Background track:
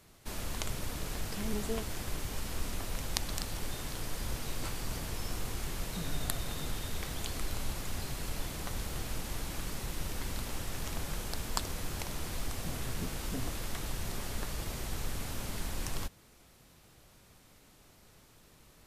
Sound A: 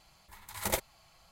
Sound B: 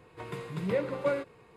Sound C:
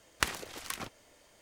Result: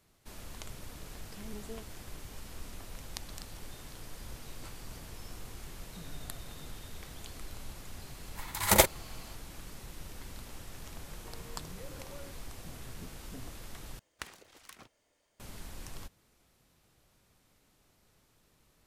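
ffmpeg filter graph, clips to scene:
ffmpeg -i bed.wav -i cue0.wav -i cue1.wav -i cue2.wav -filter_complex "[0:a]volume=-8.5dB[link_01];[1:a]dynaudnorm=framelen=210:gausssize=3:maxgain=11dB[link_02];[2:a]acompressor=threshold=-44dB:ratio=6:attack=3.2:release=140:knee=1:detection=peak[link_03];[link_01]asplit=2[link_04][link_05];[link_04]atrim=end=13.994[link_06];[3:a]atrim=end=1.41,asetpts=PTS-STARTPTS,volume=-13.5dB[link_07];[link_05]atrim=start=15.396[link_08];[link_02]atrim=end=1.31,asetpts=PTS-STARTPTS,volume=-0.5dB,afade=type=in:duration=0.004:curve=hsin,afade=type=out:start_time=1.306:duration=0.004:curve=hsin,adelay=8060[link_09];[link_03]atrim=end=1.56,asetpts=PTS-STARTPTS,volume=-4.5dB,afade=type=in:duration=0.004:curve=hsin,afade=type=out:start_time=1.556:duration=0.004:curve=hsin,adelay=11080[link_10];[link_06][link_07]acrossfade=duration=0.004:curve1=hsin:curve2=hsin[link_11];[link_11][link_08]acrossfade=duration=0.004:curve1=hsin:curve2=hsin[link_12];[link_12][link_09][link_10]amix=inputs=3:normalize=0" out.wav

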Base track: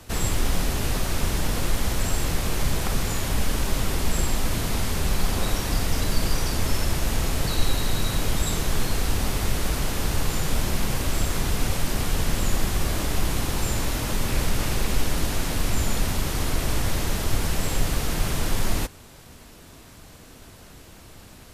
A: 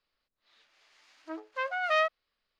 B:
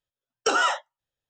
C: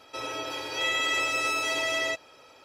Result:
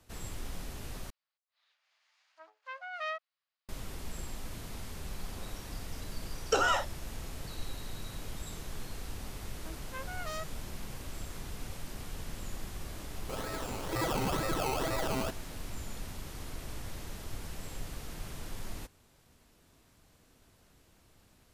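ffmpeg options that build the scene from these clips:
ffmpeg -i bed.wav -i cue0.wav -i cue1.wav -i cue2.wav -filter_complex "[1:a]asplit=2[link_01][link_02];[0:a]volume=-17.5dB[link_03];[link_01]highpass=frequency=630:width=0.5412,highpass=frequency=630:width=1.3066[link_04];[2:a]equalizer=frequency=530:width_type=o:width=0.77:gain=5[link_05];[link_02]aeval=exprs='0.0841*(abs(mod(val(0)/0.0841+3,4)-2)-1)':channel_layout=same[link_06];[3:a]acrusher=samples=20:mix=1:aa=0.000001:lfo=1:lforange=12:lforate=2.1[link_07];[link_03]asplit=2[link_08][link_09];[link_08]atrim=end=1.104[link_10];[link_04]atrim=end=2.59,asetpts=PTS-STARTPTS,volume=-10dB[link_11];[link_09]atrim=start=3.686[link_12];[link_05]atrim=end=1.29,asetpts=PTS-STARTPTS,volume=-6.5dB,afade=type=in:duration=0.004:curve=hsin,afade=type=out:start_time=1.286:duration=0.004:curve=hsin,adelay=6060[link_13];[link_06]atrim=end=2.59,asetpts=PTS-STARTPTS,volume=-11dB,afade=type=in:duration=0.004:curve=hsin,afade=type=out:start_time=2.586:duration=0.004:curve=hsin,adelay=8360[link_14];[link_07]atrim=end=2.64,asetpts=PTS-STARTPTS,volume=-5dB,afade=type=in:duration=0.004:curve=hsin,afade=type=out:start_time=2.636:duration=0.004:curve=hsin,adelay=13150[link_15];[link_10][link_11]acrossfade=duration=0.004:curve1=hsin:curve2=hsin[link_16];[link_16][link_12]acrossfade=duration=0.004:curve1=hsin:curve2=hsin[link_17];[link_17][link_13][link_14][link_15]amix=inputs=4:normalize=0" out.wav

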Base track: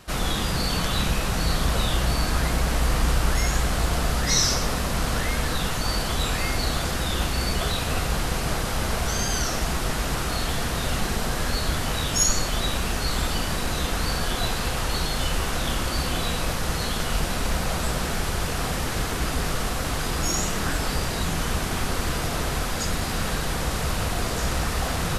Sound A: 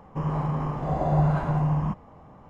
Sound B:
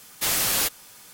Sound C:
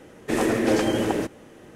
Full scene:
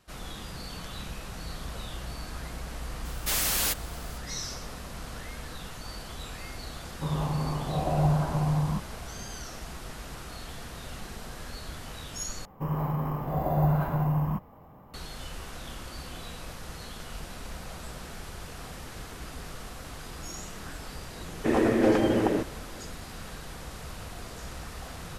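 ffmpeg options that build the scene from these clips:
ffmpeg -i bed.wav -i cue0.wav -i cue1.wav -i cue2.wav -filter_complex "[1:a]asplit=2[link_01][link_02];[0:a]volume=-15dB[link_03];[2:a]asoftclip=type=tanh:threshold=-16dB[link_04];[link_01]lowpass=1400[link_05];[link_02]acrusher=samples=3:mix=1:aa=0.000001[link_06];[3:a]lowpass=frequency=1700:poles=1[link_07];[link_03]asplit=2[link_08][link_09];[link_08]atrim=end=12.454[link_10];[link_06]atrim=end=2.49,asetpts=PTS-STARTPTS,volume=-2.5dB[link_11];[link_09]atrim=start=14.936[link_12];[link_04]atrim=end=1.13,asetpts=PTS-STARTPTS,volume=-3dB,afade=type=in:duration=0.004:curve=hsin,afade=type=out:start_time=1.126:duration=0.004:curve=hsin,adelay=134505S[link_13];[link_05]atrim=end=2.49,asetpts=PTS-STARTPTS,volume=-2.5dB,afade=type=in:duration=0.004:curve=hsin,afade=type=out:start_time=2.486:duration=0.004:curve=hsin,adelay=6860[link_14];[link_07]atrim=end=1.75,asetpts=PTS-STARTPTS,volume=-0.5dB,afade=type=in:duration=0.004:curve=hsin,afade=type=out:start_time=1.746:duration=0.004:curve=hsin,adelay=933156S[link_15];[link_10][link_11]acrossfade=duration=0.004:curve1=hsin:curve2=hsin[link_16];[link_16][link_12]acrossfade=duration=0.004:curve1=hsin:curve2=hsin[link_17];[link_17][link_13][link_14][link_15]amix=inputs=4:normalize=0" out.wav

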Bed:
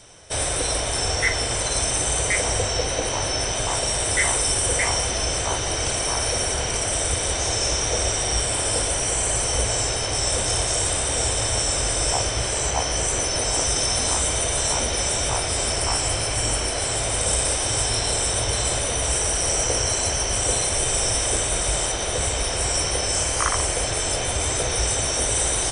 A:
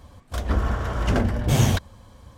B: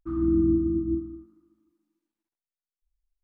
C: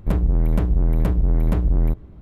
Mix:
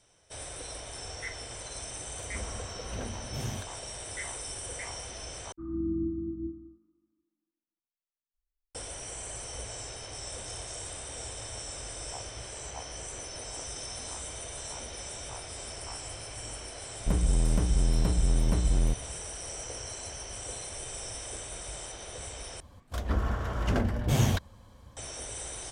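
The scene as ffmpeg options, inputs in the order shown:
ffmpeg -i bed.wav -i cue0.wav -i cue1.wav -i cue2.wav -filter_complex "[1:a]asplit=2[link_01][link_02];[0:a]volume=-17.5dB[link_03];[2:a]lowpass=frequency=1000:poles=1[link_04];[link_03]asplit=3[link_05][link_06][link_07];[link_05]atrim=end=5.524[link_08];[link_04]atrim=end=3.23,asetpts=PTS-STARTPTS,volume=-9dB[link_09];[link_06]atrim=start=8.746:end=22.604[link_10];[link_02]atrim=end=2.37,asetpts=PTS-STARTPTS,volume=-6dB[link_11];[link_07]atrim=start=24.966[link_12];[link_01]atrim=end=2.37,asetpts=PTS-STARTPTS,volume=-17.5dB,afade=type=in:duration=0.004:curve=hsin,afade=type=out:start_time=2.366:duration=0.004:curve=hsin,adelay=1850[link_13];[3:a]atrim=end=2.21,asetpts=PTS-STARTPTS,volume=-7dB,afade=type=in:duration=0.004:curve=hsin,afade=type=out:start_time=2.206:duration=0.004:curve=hsin,adelay=749700S[link_14];[link_08][link_09]acrossfade=duration=0.004:curve1=hsin:curve2=hsin[link_15];[link_15][link_10]acrossfade=duration=0.004:curve1=hsin:curve2=hsin[link_16];[link_16][link_11]acrossfade=duration=0.004:curve1=hsin:curve2=hsin[link_17];[link_17][link_12]acrossfade=duration=0.004:curve1=hsin:curve2=hsin[link_18];[link_18][link_13][link_14]amix=inputs=3:normalize=0" out.wav

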